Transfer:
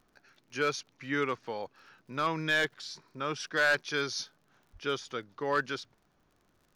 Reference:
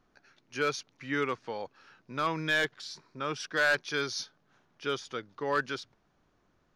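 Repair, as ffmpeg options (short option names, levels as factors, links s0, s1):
-filter_complex "[0:a]adeclick=t=4,asplit=3[s0][s1][s2];[s0]afade=t=out:st=4.72:d=0.02[s3];[s1]highpass=f=140:w=0.5412,highpass=f=140:w=1.3066,afade=t=in:st=4.72:d=0.02,afade=t=out:st=4.84:d=0.02[s4];[s2]afade=t=in:st=4.84:d=0.02[s5];[s3][s4][s5]amix=inputs=3:normalize=0"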